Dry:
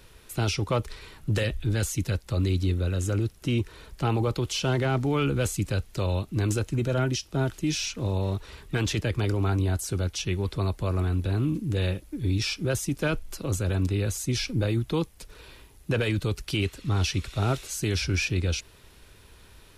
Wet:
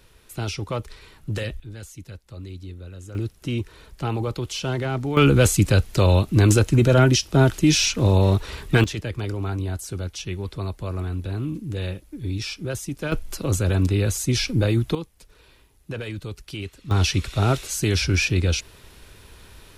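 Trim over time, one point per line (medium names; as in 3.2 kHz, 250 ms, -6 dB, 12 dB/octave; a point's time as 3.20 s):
-2 dB
from 1.60 s -12 dB
from 3.15 s -0.5 dB
from 5.17 s +10 dB
from 8.84 s -2 dB
from 13.12 s +5.5 dB
from 14.95 s -6 dB
from 16.91 s +5.5 dB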